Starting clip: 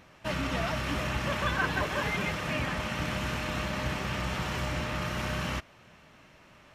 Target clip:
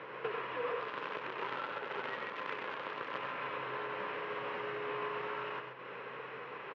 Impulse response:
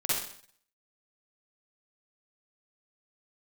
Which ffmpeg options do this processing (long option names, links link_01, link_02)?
-filter_complex "[0:a]alimiter=level_in=2.5dB:limit=-24dB:level=0:latency=1:release=284,volume=-2.5dB,acompressor=threshold=-47dB:ratio=6,aeval=exprs='val(0)+0.000794*(sin(2*PI*60*n/s)+sin(2*PI*2*60*n/s)/2+sin(2*PI*3*60*n/s)/3+sin(2*PI*4*60*n/s)/4+sin(2*PI*5*60*n/s)/5)':channel_layout=same,afreqshift=-190,asettb=1/sr,asplit=3[link_01][link_02][link_03];[link_01]atrim=end=0.804[link_04];[link_02]atrim=start=0.8:end=3.18,asetpts=PTS-STARTPTS,afade=type=in:duration=0.004:curve=qsin,afade=type=out:start_time=2.376:duration=0.004:curve=qsin,acrusher=bits=8:dc=4:mix=0:aa=0.000001[link_05];[link_03]atrim=start=3.176[link_06];[link_04][link_05]acrossfade=duration=0.004:curve1=hsin:curve2=qsin[link_07];[link_07][link_06]acrossfade=duration=0.004:curve1=qsin:curve2=hsin,highpass=frequency=220:width=0.5412,highpass=frequency=220:width=1.3066,equalizer=frequency=230:width_type=q:width=4:gain=-6,equalizer=frequency=330:width_type=q:width=4:gain=-4,equalizer=frequency=500:width_type=q:width=4:gain=8,equalizer=frequency=710:width_type=q:width=4:gain=-7,equalizer=frequency=1100:width_type=q:width=4:gain=4,equalizer=frequency=2300:width_type=q:width=4:gain=-3,lowpass=frequency=2800:width=0.5412,lowpass=frequency=2800:width=1.3066,aecho=1:1:93.29|131.2:0.501|0.447,volume=11dB"